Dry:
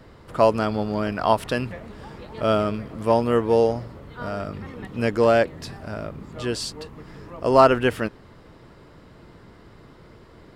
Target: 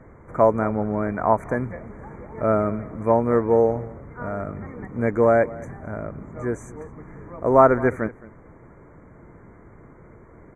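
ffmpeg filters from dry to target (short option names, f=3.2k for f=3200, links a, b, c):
-filter_complex "[0:a]aemphasis=mode=reproduction:type=75fm,asplit=2[a][b];[b]adelay=215.7,volume=-20dB,highshelf=f=4k:g=-4.85[c];[a][c]amix=inputs=2:normalize=0,afftfilt=real='re*(1-between(b*sr/4096,2400,5900))':imag='im*(1-between(b*sr/4096,2400,5900))':win_size=4096:overlap=0.75"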